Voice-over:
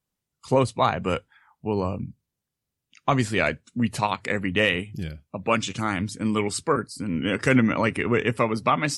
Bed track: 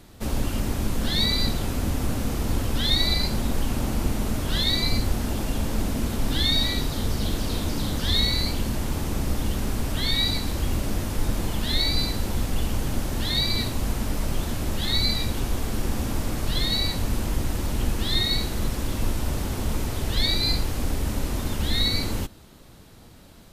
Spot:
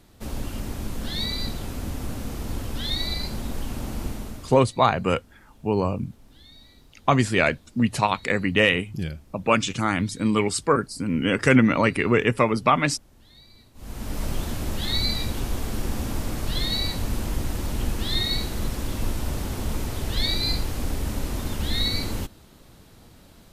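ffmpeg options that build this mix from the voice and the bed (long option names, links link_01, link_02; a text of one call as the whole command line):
ffmpeg -i stem1.wav -i stem2.wav -filter_complex "[0:a]adelay=4000,volume=2.5dB[link_01];[1:a]volume=21dB,afade=type=out:start_time=4.06:duration=0.56:silence=0.0749894,afade=type=in:start_time=13.74:duration=0.5:silence=0.0473151[link_02];[link_01][link_02]amix=inputs=2:normalize=0" out.wav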